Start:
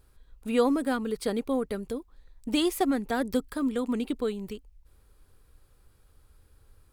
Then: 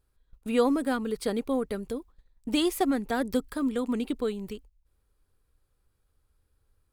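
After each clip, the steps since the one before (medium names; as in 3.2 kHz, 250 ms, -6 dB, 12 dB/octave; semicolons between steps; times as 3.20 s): gate -47 dBFS, range -12 dB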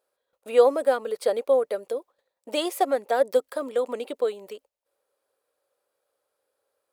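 resonant high-pass 560 Hz, resonance Q 4.9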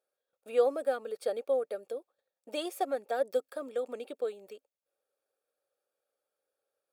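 comb of notches 1 kHz; trim -8.5 dB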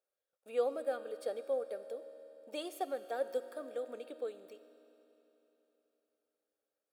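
reverberation RT60 3.6 s, pre-delay 3 ms, DRR 10.5 dB; trim -6 dB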